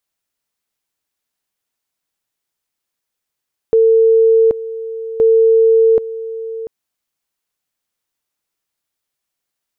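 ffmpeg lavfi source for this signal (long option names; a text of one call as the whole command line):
ffmpeg -f lavfi -i "aevalsrc='pow(10,(-7-15*gte(mod(t,1.47),0.78))/20)*sin(2*PI*450*t)':duration=2.94:sample_rate=44100" out.wav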